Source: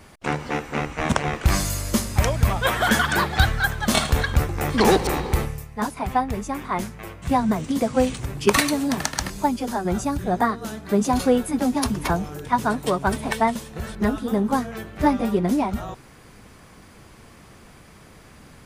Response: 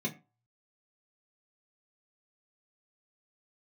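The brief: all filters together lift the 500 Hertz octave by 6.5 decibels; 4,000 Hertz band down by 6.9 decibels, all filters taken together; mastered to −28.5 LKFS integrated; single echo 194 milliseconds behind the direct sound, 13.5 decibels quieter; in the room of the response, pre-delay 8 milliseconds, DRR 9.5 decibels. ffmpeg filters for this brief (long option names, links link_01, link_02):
-filter_complex "[0:a]equalizer=frequency=500:width_type=o:gain=8,equalizer=frequency=4000:width_type=o:gain=-9,aecho=1:1:194:0.211,asplit=2[link_01][link_02];[1:a]atrim=start_sample=2205,adelay=8[link_03];[link_02][link_03]afir=irnorm=-1:irlink=0,volume=-13dB[link_04];[link_01][link_04]amix=inputs=2:normalize=0,volume=-10dB"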